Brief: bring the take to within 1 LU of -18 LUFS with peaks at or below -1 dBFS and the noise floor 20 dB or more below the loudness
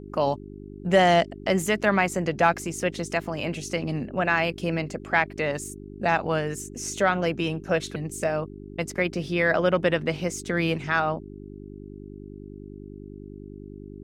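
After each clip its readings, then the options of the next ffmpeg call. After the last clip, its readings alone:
hum 50 Hz; highest harmonic 400 Hz; hum level -38 dBFS; loudness -25.5 LUFS; peak level -5.5 dBFS; loudness target -18.0 LUFS
-> -af "bandreject=f=50:t=h:w=4,bandreject=f=100:t=h:w=4,bandreject=f=150:t=h:w=4,bandreject=f=200:t=h:w=4,bandreject=f=250:t=h:w=4,bandreject=f=300:t=h:w=4,bandreject=f=350:t=h:w=4,bandreject=f=400:t=h:w=4"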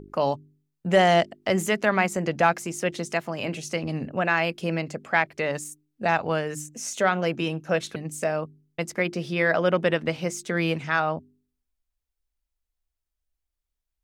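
hum not found; loudness -25.5 LUFS; peak level -6.0 dBFS; loudness target -18.0 LUFS
-> -af "volume=2.37,alimiter=limit=0.891:level=0:latency=1"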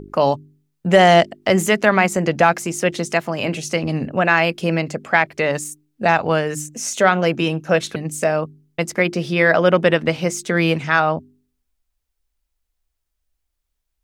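loudness -18.0 LUFS; peak level -1.0 dBFS; noise floor -76 dBFS

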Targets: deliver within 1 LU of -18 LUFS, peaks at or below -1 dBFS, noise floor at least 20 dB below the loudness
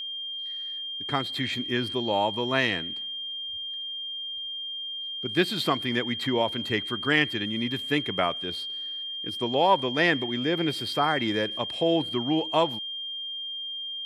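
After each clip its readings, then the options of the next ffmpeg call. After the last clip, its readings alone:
steady tone 3.2 kHz; tone level -32 dBFS; loudness -27.0 LUFS; peak level -8.0 dBFS; loudness target -18.0 LUFS
-> -af "bandreject=f=3200:w=30"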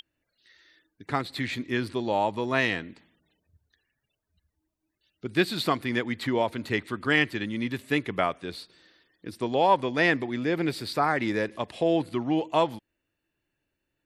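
steady tone not found; loudness -27.0 LUFS; peak level -8.5 dBFS; loudness target -18.0 LUFS
-> -af "volume=2.82,alimiter=limit=0.891:level=0:latency=1"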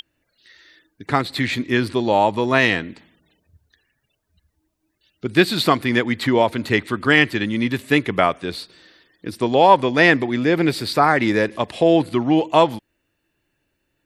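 loudness -18.0 LUFS; peak level -1.0 dBFS; noise floor -73 dBFS

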